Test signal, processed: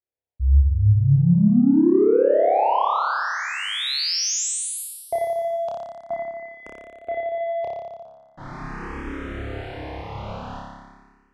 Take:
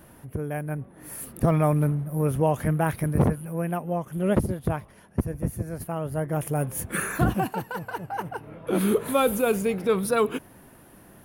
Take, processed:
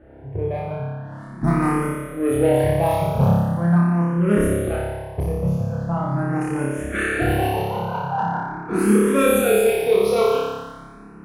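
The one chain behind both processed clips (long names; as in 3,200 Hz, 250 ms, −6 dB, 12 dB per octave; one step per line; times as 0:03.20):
low-pass that shuts in the quiet parts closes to 1,100 Hz, open at −18.5 dBFS
in parallel at −10 dB: soft clipping −25.5 dBFS
on the sum: harmonic generator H 5 −22 dB, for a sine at −9 dBFS
flutter between parallel walls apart 5 metres, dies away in 1.5 s
frequency shifter mixed with the dry sound +0.42 Hz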